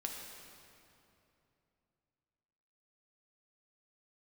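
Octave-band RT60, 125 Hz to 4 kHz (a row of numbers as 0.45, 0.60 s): 3.6, 3.3, 3.0, 2.7, 2.4, 2.1 s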